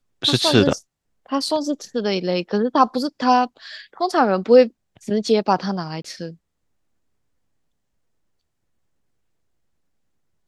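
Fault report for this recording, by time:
6.02–6.04 s: dropout 24 ms

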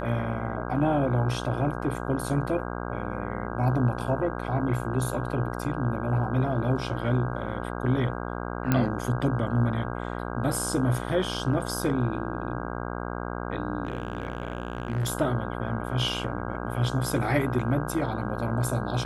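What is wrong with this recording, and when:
buzz 60 Hz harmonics 27 -33 dBFS
8.72 s: pop -10 dBFS
13.85–15.09 s: clipped -23.5 dBFS

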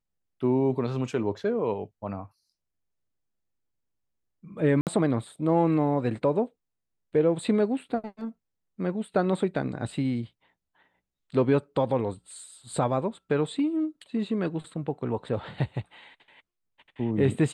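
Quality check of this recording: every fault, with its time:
4.81–4.87 s: dropout 58 ms

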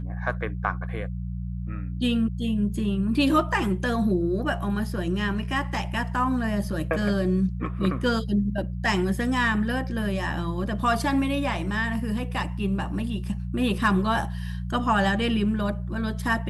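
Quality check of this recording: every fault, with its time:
hum 60 Hz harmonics 3 -31 dBFS

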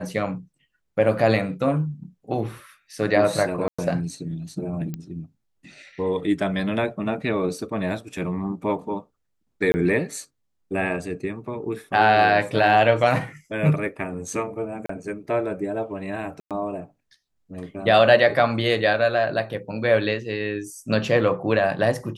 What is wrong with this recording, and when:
3.68–3.79 s: dropout 105 ms
4.94 s: pop -18 dBFS
9.72–9.74 s: dropout 20 ms
14.86–14.89 s: dropout 34 ms
16.40–16.51 s: dropout 107 ms

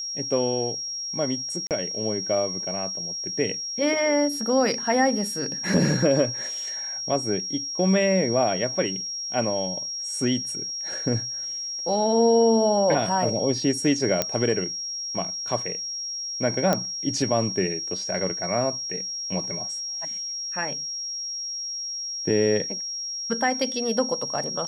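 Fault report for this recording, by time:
whine 5.6 kHz -29 dBFS
1.67–1.71 s: dropout 38 ms
14.22 s: pop -6 dBFS
16.73 s: pop -8 dBFS

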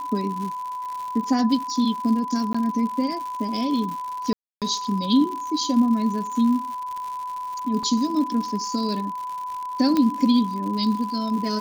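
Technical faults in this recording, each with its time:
crackle 150 per s -30 dBFS
whine 1 kHz -28 dBFS
2.53–2.54 s: dropout 15 ms
4.33–4.62 s: dropout 287 ms
7.83 s: dropout 3.6 ms
9.97 s: pop -10 dBFS

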